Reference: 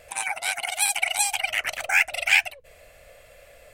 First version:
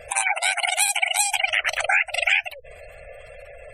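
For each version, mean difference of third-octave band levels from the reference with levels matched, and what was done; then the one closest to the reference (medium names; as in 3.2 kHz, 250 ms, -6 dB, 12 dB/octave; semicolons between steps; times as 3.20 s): 6.5 dB: compression 6:1, threshold -26 dBFS, peak gain reduction 12 dB; spectral gate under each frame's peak -20 dB strong; trim +9 dB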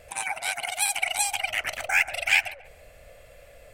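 2.0 dB: bass shelf 420 Hz +6.5 dB; on a send: tape echo 137 ms, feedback 38%, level -13 dB, low-pass 1.3 kHz; on the sum: trim -2.5 dB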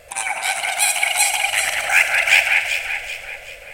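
5.0 dB: echo whose repeats swap between lows and highs 192 ms, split 2.5 kHz, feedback 65%, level -2.5 dB; Schroeder reverb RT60 1.9 s, combs from 31 ms, DRR 7.5 dB; trim +4.5 dB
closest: second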